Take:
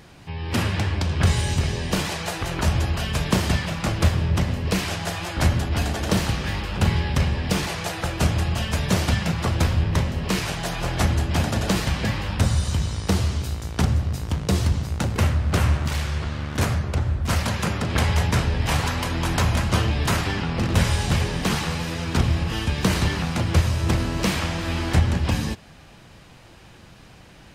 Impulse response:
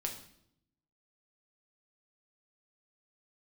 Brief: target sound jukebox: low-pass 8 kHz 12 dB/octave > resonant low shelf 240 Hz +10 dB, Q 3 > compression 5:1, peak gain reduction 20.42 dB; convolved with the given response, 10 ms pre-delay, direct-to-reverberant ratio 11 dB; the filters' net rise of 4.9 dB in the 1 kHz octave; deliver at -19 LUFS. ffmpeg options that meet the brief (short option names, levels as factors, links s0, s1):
-filter_complex "[0:a]equalizer=f=1000:t=o:g=7,asplit=2[s0][s1];[1:a]atrim=start_sample=2205,adelay=10[s2];[s1][s2]afir=irnorm=-1:irlink=0,volume=0.251[s3];[s0][s3]amix=inputs=2:normalize=0,lowpass=8000,lowshelf=f=240:t=q:w=3:g=10,acompressor=threshold=0.0708:ratio=5,volume=2.24"